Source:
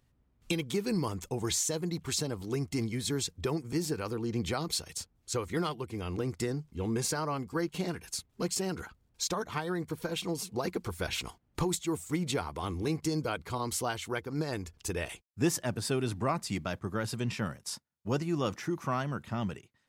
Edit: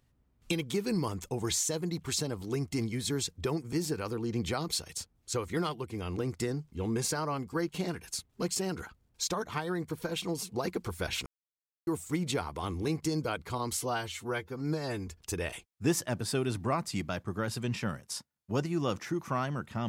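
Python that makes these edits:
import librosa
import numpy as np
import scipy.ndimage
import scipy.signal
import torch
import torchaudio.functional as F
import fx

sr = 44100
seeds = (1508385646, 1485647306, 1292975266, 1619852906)

y = fx.edit(x, sr, fx.silence(start_s=11.26, length_s=0.61),
    fx.stretch_span(start_s=13.77, length_s=0.87, factor=1.5), tone=tone)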